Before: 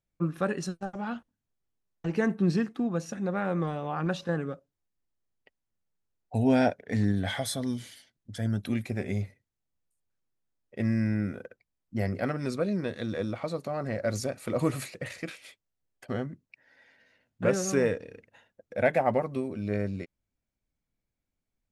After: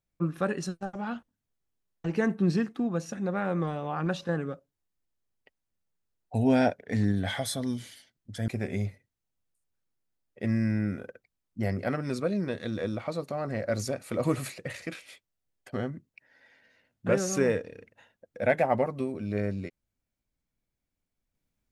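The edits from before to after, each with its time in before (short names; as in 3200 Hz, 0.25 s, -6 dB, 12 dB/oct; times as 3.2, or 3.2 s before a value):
8.48–8.84 cut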